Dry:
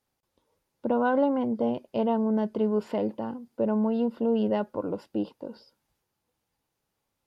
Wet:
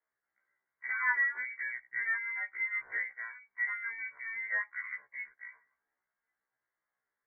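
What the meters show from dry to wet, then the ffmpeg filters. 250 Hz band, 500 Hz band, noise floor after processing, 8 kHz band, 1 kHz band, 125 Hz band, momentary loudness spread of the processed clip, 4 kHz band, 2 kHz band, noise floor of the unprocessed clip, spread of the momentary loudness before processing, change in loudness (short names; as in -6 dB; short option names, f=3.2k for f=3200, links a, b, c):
under -40 dB, -36.0 dB, under -85 dBFS, n/a, -12.5 dB, under -35 dB, 14 LU, under -35 dB, +13.0 dB, -82 dBFS, 12 LU, -6.5 dB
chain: -af "highpass=640,lowpass=f=2.1k:t=q:w=0.5098,lowpass=f=2.1k:t=q:w=0.6013,lowpass=f=2.1k:t=q:w=0.9,lowpass=f=2.1k:t=q:w=2.563,afreqshift=-2500,afftfilt=real='re*1.73*eq(mod(b,3),0)':imag='im*1.73*eq(mod(b,3),0)':win_size=2048:overlap=0.75"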